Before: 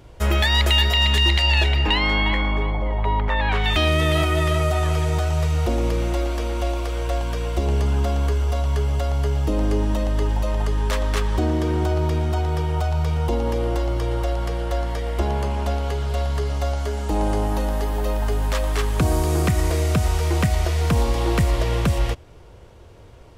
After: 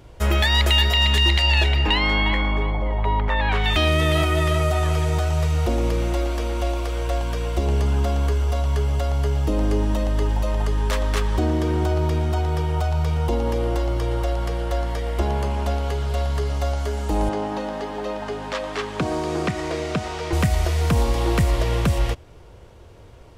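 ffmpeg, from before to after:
ffmpeg -i in.wav -filter_complex "[0:a]asettb=1/sr,asplit=3[link_01][link_02][link_03];[link_01]atrim=end=17.294[link_04];[link_02]atrim=start=17.29:end=20.33,asetpts=PTS-STARTPTS,afade=type=in:duration=0.004:curve=qsin,afade=type=out:start_time=3.036:duration=0.004:curve=qsin,highpass=180,lowpass=5000[link_05];[link_03]atrim=start=20.326[link_06];[link_04][link_05]acrossfade=duration=0.004:curve1=hsin:curve2=qsin[link_07];[link_07][link_06]acrossfade=duration=0.004:curve1=qsin:curve2=hsin" out.wav

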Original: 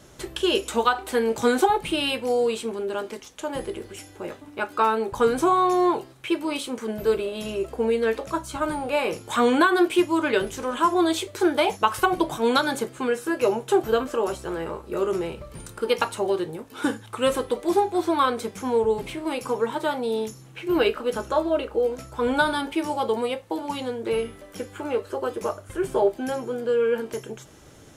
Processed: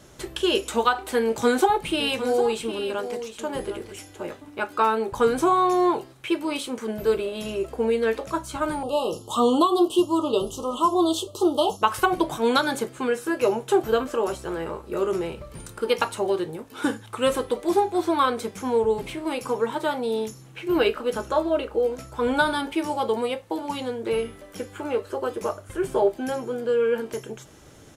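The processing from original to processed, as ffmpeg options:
ffmpeg -i in.wav -filter_complex "[0:a]asplit=3[link_01][link_02][link_03];[link_01]afade=type=out:start_time=1.99:duration=0.02[link_04];[link_02]aecho=1:1:758:0.282,afade=type=in:start_time=1.99:duration=0.02,afade=type=out:start_time=4.26:duration=0.02[link_05];[link_03]afade=type=in:start_time=4.26:duration=0.02[link_06];[link_04][link_05][link_06]amix=inputs=3:normalize=0,asettb=1/sr,asplit=3[link_07][link_08][link_09];[link_07]atrim=end=8.834[link_10];[link_08]atrim=start=8.83:end=11.82,asetpts=PTS-STARTPTS,afade=type=in:duration=0.004:curve=qsin,afade=type=out:start_time=2.986:duration=0.004:curve=qsin,asuperstop=centerf=1900:order=20:qfactor=1.3[link_11];[link_09]atrim=start=11.816[link_12];[link_10][link_11]acrossfade=duration=0.004:curve1=hsin:curve2=qsin[link_13];[link_13][link_12]acrossfade=duration=0.004:curve1=qsin:curve2=hsin" out.wav

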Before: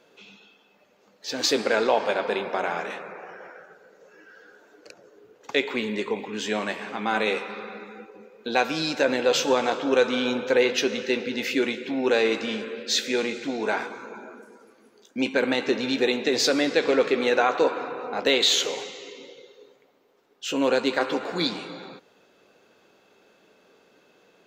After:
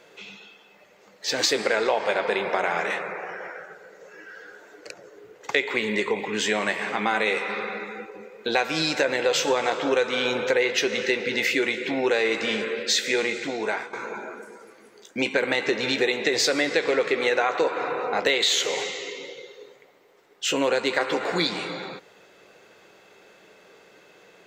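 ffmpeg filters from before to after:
ffmpeg -i in.wav -filter_complex "[0:a]asplit=2[link_01][link_02];[link_01]atrim=end=13.93,asetpts=PTS-STARTPTS,afade=type=out:start_time=13.19:duration=0.74:silence=0.223872[link_03];[link_02]atrim=start=13.93,asetpts=PTS-STARTPTS,afade=type=in:duration=0.004:curve=hsin:silence=0.223872[link_04];[link_03][link_04]concat=n=2:v=0:a=1,equalizer=frequency=250:width_type=o:width=0.33:gain=-10,equalizer=frequency=2000:width_type=o:width=0.33:gain=7,equalizer=frequency=8000:width_type=o:width=0.33:gain=5,acompressor=threshold=-27dB:ratio=3,volume=6dB" out.wav

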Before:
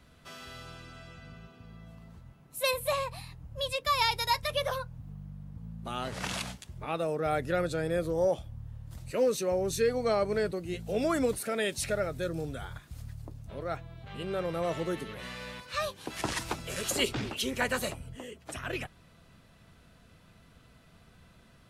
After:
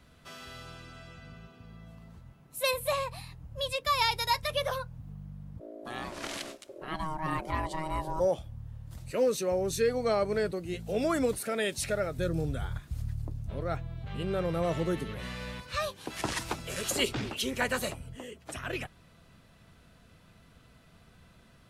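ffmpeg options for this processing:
ffmpeg -i in.wav -filter_complex "[0:a]asplit=3[link_01][link_02][link_03];[link_01]afade=type=out:start_time=5.59:duration=0.02[link_04];[link_02]aeval=exprs='val(0)*sin(2*PI*470*n/s)':channel_layout=same,afade=type=in:start_time=5.59:duration=0.02,afade=type=out:start_time=8.19:duration=0.02[link_05];[link_03]afade=type=in:start_time=8.19:duration=0.02[link_06];[link_04][link_05][link_06]amix=inputs=3:normalize=0,asettb=1/sr,asplit=3[link_07][link_08][link_09];[link_07]atrim=end=12.184[link_10];[link_08]atrim=start=12.18:end=15.77,asetpts=PTS-STARTPTS,afade=type=in:duration=0.004:curve=qsin,afade=type=out:start_time=3.586:duration=0.004:curve=qsin,lowshelf=frequency=180:gain=10[link_11];[link_09]atrim=start=15.766[link_12];[link_10][link_11]acrossfade=duration=0.004:curve1=hsin:curve2=qsin[link_13];[link_13][link_12]acrossfade=duration=0.004:curve1=qsin:curve2=hsin" out.wav

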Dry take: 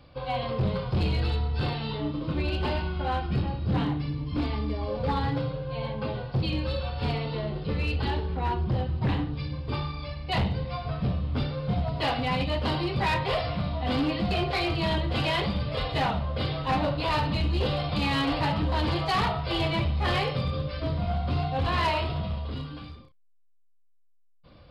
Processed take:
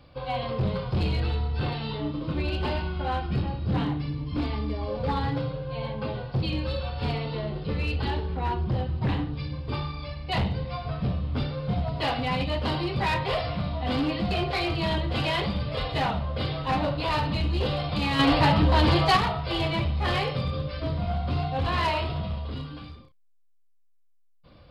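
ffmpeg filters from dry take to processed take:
ffmpeg -i in.wav -filter_complex "[0:a]asettb=1/sr,asplit=3[link_01][link_02][link_03];[link_01]atrim=end=1.204[link_04];[link_02]atrim=start=1.2:end=1.72,asetpts=PTS-STARTPTS,afade=type=in:duration=0.004:curve=qsin,afade=type=out:start_time=0.516:duration=0.004:curve=qsin,acrossover=split=4100[link_05][link_06];[link_06]acompressor=threshold=-53dB:ratio=4:attack=1:release=60[link_07];[link_05][link_07]amix=inputs=2:normalize=0[link_08];[link_03]atrim=start=1.716[link_09];[link_04][link_08]acrossfade=duration=0.004:curve1=hsin:curve2=qsin[link_10];[link_10][link_09]acrossfade=duration=0.004:curve1=qsin:curve2=hsin,asettb=1/sr,asplit=3[link_11][link_12][link_13];[link_11]atrim=end=18.194[link_14];[link_12]atrim=start=18.19:end=19.17,asetpts=PTS-STARTPTS,afade=type=in:duration=0.004:curve=qsin,afade=type=out:start_time=0.976:duration=0.004:curve=qsin,acontrast=60[link_15];[link_13]atrim=start=19.166[link_16];[link_14][link_15]acrossfade=duration=0.004:curve1=hsin:curve2=qsin[link_17];[link_17][link_16]acrossfade=duration=0.004:curve1=qsin:curve2=hsin" out.wav

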